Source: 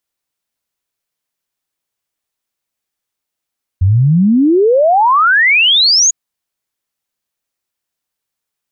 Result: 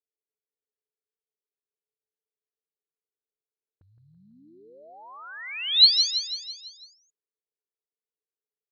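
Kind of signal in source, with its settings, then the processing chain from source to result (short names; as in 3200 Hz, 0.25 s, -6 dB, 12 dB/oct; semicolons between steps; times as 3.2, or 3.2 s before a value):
log sweep 87 Hz -> 6900 Hz 2.30 s -6.5 dBFS
low shelf 220 Hz +7 dB; auto-wah 430–4100 Hz, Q 16, up, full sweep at -17 dBFS; on a send: feedback echo 0.166 s, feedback 54%, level -8 dB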